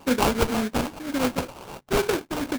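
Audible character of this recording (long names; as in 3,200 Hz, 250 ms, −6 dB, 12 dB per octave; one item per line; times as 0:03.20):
a buzz of ramps at a fixed pitch in blocks of 16 samples
phaser sweep stages 8, 2 Hz, lowest notch 680–2,300 Hz
aliases and images of a low sample rate 1,900 Hz, jitter 20%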